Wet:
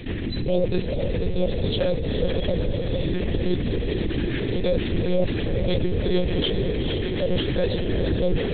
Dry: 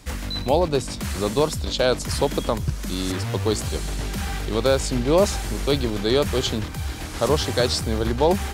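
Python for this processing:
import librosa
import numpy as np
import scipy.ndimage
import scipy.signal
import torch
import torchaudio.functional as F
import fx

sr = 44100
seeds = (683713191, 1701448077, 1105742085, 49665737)

y = fx.octave_divider(x, sr, octaves=1, level_db=2.0)
y = fx.highpass(y, sr, hz=110.0, slope=6)
y = fx.peak_eq(y, sr, hz=1400.0, db=-3.5, octaves=1.4)
y = fx.rotary_switch(y, sr, hz=1.1, then_hz=6.7, switch_at_s=3.52)
y = fx.brickwall_bandstop(y, sr, low_hz=690.0, high_hz=1500.0)
y = fx.air_absorb(y, sr, metres=56.0)
y = fx.echo_diffused(y, sr, ms=458, feedback_pct=59, wet_db=-8.0)
y = fx.lpc_monotone(y, sr, seeds[0], pitch_hz=180.0, order=10)
y = fx.env_flatten(y, sr, amount_pct=50)
y = F.gain(torch.from_numpy(y), -2.0).numpy()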